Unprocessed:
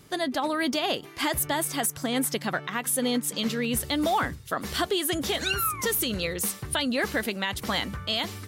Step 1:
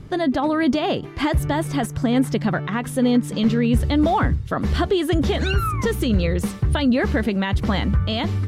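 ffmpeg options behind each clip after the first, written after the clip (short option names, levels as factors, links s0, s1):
-filter_complex "[0:a]aemphasis=mode=reproduction:type=riaa,asplit=2[s0][s1];[s1]alimiter=limit=0.106:level=0:latency=1,volume=0.891[s2];[s0][s2]amix=inputs=2:normalize=0"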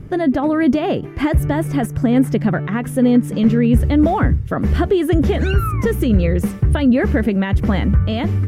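-af "equalizer=f=1000:t=o:w=1:g=-6,equalizer=f=4000:t=o:w=1:g=-12,equalizer=f=8000:t=o:w=1:g=-6,volume=1.78"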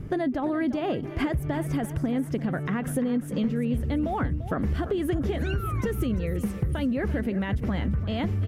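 -af "acompressor=threshold=0.0891:ratio=10,aecho=1:1:343|686|1029:0.211|0.074|0.0259,volume=0.75"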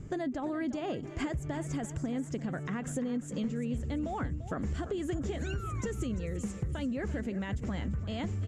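-af "lowpass=f=7200:t=q:w=8.6,volume=0.422"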